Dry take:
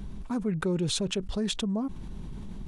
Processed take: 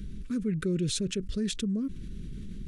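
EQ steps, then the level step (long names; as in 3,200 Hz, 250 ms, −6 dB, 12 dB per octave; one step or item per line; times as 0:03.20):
dynamic equaliser 3,200 Hz, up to −5 dB, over −46 dBFS, Q 1.8
Butterworth band-reject 830 Hz, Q 0.71
0.0 dB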